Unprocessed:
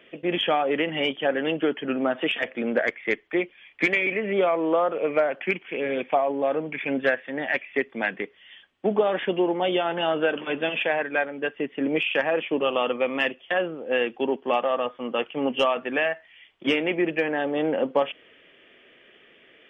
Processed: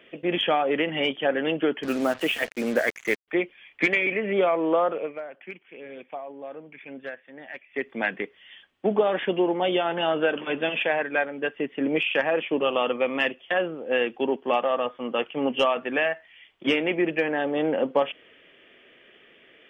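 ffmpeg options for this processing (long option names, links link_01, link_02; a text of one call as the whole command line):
ffmpeg -i in.wav -filter_complex "[0:a]asettb=1/sr,asplit=3[link_01][link_02][link_03];[link_01]atrim=end=1.834[link_04];[link_02]atrim=start=1.83:end=3.28,asetpts=PTS-STARTPTS,afade=type=in:duration=0.004:curve=qsin,afade=type=out:start_time=1.446:duration=0.004:curve=qsin,acrusher=bits=5:mix=0:aa=0.5[link_05];[link_03]atrim=start=3.276[link_06];[link_04][link_05]acrossfade=duration=0.004:curve1=hsin:curve2=qsin[link_07];[link_07][link_06]acrossfade=duration=0.004:curve1=qsin:curve2=hsin,asplit=3[link_08][link_09][link_10];[link_08]atrim=end=5.13,asetpts=PTS-STARTPTS,afade=type=out:start_time=4.92:duration=0.21:silence=0.199526[link_11];[link_09]atrim=start=5.13:end=7.69,asetpts=PTS-STARTPTS,volume=-14dB[link_12];[link_10]atrim=start=7.69,asetpts=PTS-STARTPTS,afade=type=in:duration=0.21:silence=0.199526[link_13];[link_11][link_12][link_13]concat=n=3:v=0:a=1" out.wav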